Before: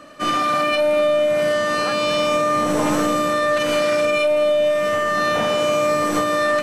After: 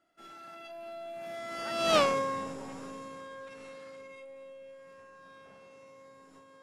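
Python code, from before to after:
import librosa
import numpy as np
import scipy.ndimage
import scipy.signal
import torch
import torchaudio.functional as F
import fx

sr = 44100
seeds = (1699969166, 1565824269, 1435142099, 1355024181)

y = fx.doppler_pass(x, sr, speed_mps=38, closest_m=2.2, pass_at_s=1.98)
y = fx.transformer_sat(y, sr, knee_hz=790.0)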